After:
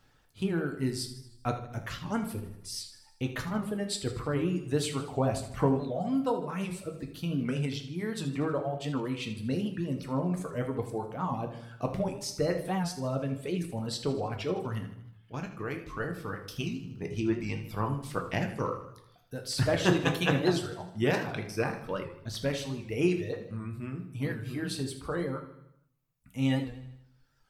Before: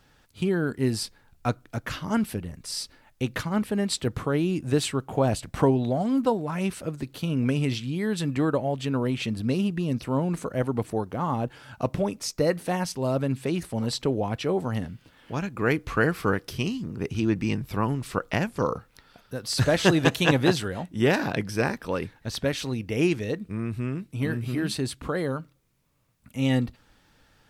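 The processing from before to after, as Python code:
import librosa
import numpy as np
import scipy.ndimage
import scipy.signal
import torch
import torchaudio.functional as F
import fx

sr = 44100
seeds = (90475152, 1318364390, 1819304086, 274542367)

y = fx.dereverb_blind(x, sr, rt60_s=1.9)
y = fx.level_steps(y, sr, step_db=10, at=(14.88, 16.47))
y = fx.echo_feedback(y, sr, ms=78, feedback_pct=55, wet_db=-13.5)
y = fx.room_shoebox(y, sr, seeds[0], volume_m3=57.0, walls='mixed', distance_m=0.42)
y = fx.record_warp(y, sr, rpm=78.0, depth_cents=100.0)
y = y * 10.0 ** (-6.0 / 20.0)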